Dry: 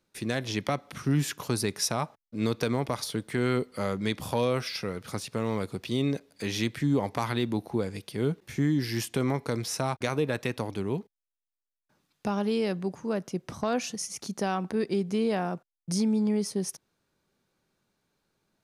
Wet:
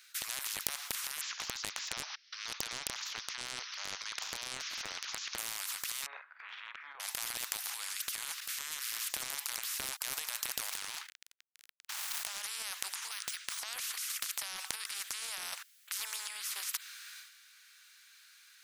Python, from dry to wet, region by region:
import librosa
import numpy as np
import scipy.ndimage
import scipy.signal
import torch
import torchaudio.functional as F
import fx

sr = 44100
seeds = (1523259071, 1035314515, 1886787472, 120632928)

y = fx.chain(x, sr, fx.steep_lowpass(hz=5800.0, slope=96),
    fx.high_shelf(hz=4000.0, db=9.0),
    fx.band_squash(depth_pct=40), at=(1.21, 5.38))
y = fx.chain(y, sr, fx.lowpass(hz=1100.0, slope=24),
    fx.doubler(ms=45.0, db=-9.5), at=(6.06, 7.0))
y = fx.chain(y, sr, fx.median_filter(points=15),
    fx.high_shelf(hz=7200.0, db=-7.0),
    fx.pre_swell(db_per_s=31.0), at=(10.66, 12.42))
y = fx.chain(y, sr, fx.highpass(hz=1400.0, slope=12),
    fx.resample_linear(factor=3), at=(13.11, 13.59))
y = scipy.signal.sosfilt(scipy.signal.butter(6, 1500.0, 'highpass', fs=sr, output='sos'), y)
y = fx.transient(y, sr, attack_db=-1, sustain_db=11)
y = fx.spectral_comp(y, sr, ratio=10.0)
y = F.gain(torch.from_numpy(y), 4.5).numpy()